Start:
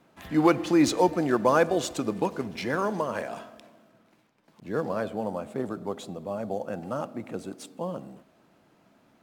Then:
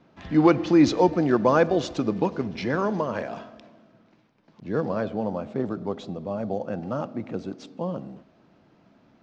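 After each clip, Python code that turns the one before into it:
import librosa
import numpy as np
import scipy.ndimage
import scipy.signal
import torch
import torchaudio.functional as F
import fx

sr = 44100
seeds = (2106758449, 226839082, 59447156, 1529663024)

y = scipy.signal.sosfilt(scipy.signal.butter(6, 6000.0, 'lowpass', fs=sr, output='sos'), x)
y = fx.low_shelf(y, sr, hz=370.0, db=6.5)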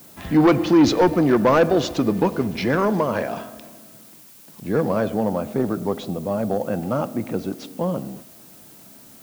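y = fx.dmg_noise_colour(x, sr, seeds[0], colour='blue', level_db=-54.0)
y = 10.0 ** (-15.5 / 20.0) * np.tanh(y / 10.0 ** (-15.5 / 20.0))
y = F.gain(torch.from_numpy(y), 6.5).numpy()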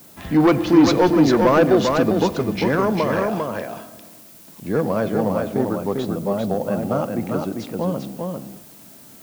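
y = x + 10.0 ** (-4.0 / 20.0) * np.pad(x, (int(398 * sr / 1000.0), 0))[:len(x)]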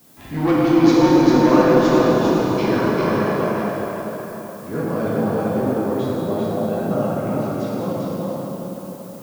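y = fx.rev_plate(x, sr, seeds[1], rt60_s=4.3, hf_ratio=0.65, predelay_ms=0, drr_db=-7.5)
y = F.gain(torch.from_numpy(y), -8.0).numpy()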